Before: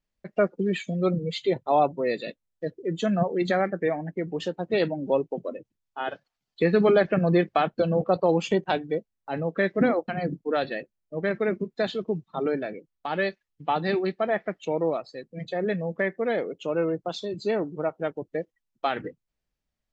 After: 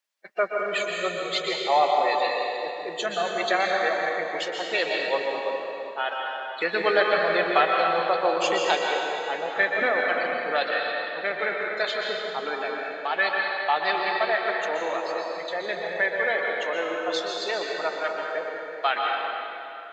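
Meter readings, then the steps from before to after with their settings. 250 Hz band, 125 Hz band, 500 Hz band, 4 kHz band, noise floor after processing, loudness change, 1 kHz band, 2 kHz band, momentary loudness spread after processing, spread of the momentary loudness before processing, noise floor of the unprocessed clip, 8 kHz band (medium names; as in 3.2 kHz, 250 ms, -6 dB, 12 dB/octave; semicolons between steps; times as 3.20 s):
-10.5 dB, -19.0 dB, -1.0 dB, +9.5 dB, -36 dBFS, +1.5 dB, +5.0 dB, +9.0 dB, 9 LU, 12 LU, -84 dBFS, no reading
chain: coarse spectral quantiser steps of 15 dB; high-pass 940 Hz 12 dB/octave; plate-style reverb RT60 2.9 s, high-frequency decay 0.85×, pre-delay 110 ms, DRR -1 dB; trim +6.5 dB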